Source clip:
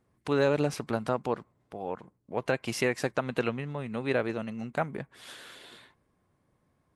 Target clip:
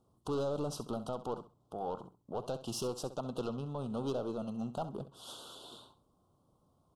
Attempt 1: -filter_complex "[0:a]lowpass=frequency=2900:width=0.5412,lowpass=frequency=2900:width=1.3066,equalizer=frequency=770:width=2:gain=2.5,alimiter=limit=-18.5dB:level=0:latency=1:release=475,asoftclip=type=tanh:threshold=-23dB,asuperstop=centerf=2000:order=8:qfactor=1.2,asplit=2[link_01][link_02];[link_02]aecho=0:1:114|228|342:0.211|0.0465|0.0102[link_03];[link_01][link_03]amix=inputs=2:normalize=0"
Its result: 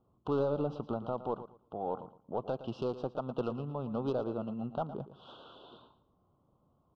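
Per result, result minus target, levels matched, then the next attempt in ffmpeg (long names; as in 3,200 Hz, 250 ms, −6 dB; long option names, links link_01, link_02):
echo 48 ms late; 4,000 Hz band −10.0 dB; soft clipping: distortion −7 dB
-filter_complex "[0:a]equalizer=frequency=770:width=2:gain=2.5,alimiter=limit=-18.5dB:level=0:latency=1:release=475,asoftclip=type=tanh:threshold=-23dB,asuperstop=centerf=2000:order=8:qfactor=1.2,asplit=2[link_01][link_02];[link_02]aecho=0:1:66|132|198:0.211|0.0465|0.0102[link_03];[link_01][link_03]amix=inputs=2:normalize=0"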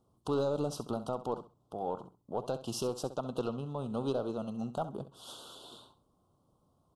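soft clipping: distortion −7 dB
-filter_complex "[0:a]equalizer=frequency=770:width=2:gain=2.5,alimiter=limit=-18.5dB:level=0:latency=1:release=475,asoftclip=type=tanh:threshold=-30dB,asuperstop=centerf=2000:order=8:qfactor=1.2,asplit=2[link_01][link_02];[link_02]aecho=0:1:66|132|198:0.211|0.0465|0.0102[link_03];[link_01][link_03]amix=inputs=2:normalize=0"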